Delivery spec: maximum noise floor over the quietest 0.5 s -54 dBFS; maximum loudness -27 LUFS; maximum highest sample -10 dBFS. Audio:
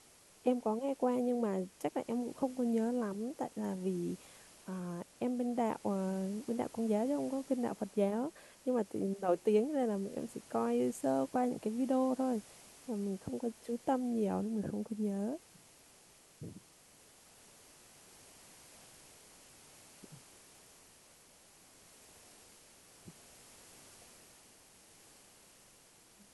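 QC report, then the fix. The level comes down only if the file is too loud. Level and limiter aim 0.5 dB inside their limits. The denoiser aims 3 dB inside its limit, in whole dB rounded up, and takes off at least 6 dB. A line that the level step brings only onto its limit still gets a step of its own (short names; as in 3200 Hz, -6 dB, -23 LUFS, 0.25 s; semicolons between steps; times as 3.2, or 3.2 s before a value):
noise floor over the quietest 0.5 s -62 dBFS: OK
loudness -36.0 LUFS: OK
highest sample -19.0 dBFS: OK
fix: none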